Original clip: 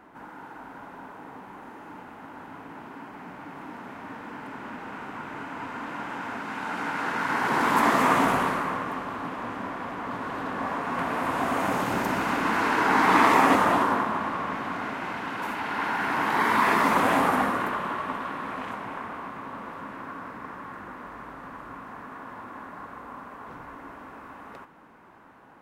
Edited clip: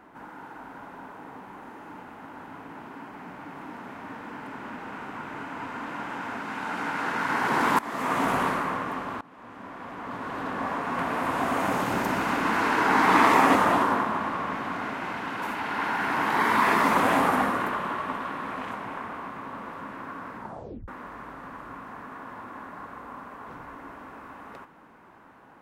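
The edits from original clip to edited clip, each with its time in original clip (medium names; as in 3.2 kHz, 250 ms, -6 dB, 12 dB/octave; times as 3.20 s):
7.79–8.46 s: fade in, from -21 dB
9.21–10.47 s: fade in, from -22.5 dB
20.37 s: tape stop 0.51 s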